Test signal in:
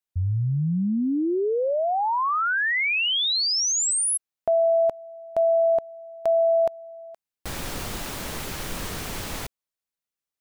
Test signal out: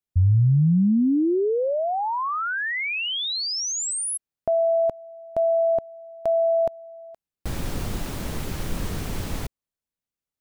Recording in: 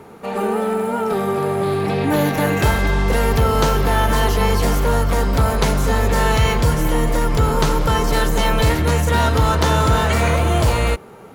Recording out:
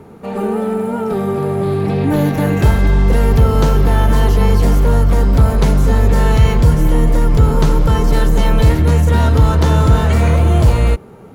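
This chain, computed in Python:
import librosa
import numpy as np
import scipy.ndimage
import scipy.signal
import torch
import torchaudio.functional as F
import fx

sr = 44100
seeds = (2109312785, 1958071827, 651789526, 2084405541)

y = fx.low_shelf(x, sr, hz=410.0, db=11.5)
y = y * librosa.db_to_amplitude(-4.0)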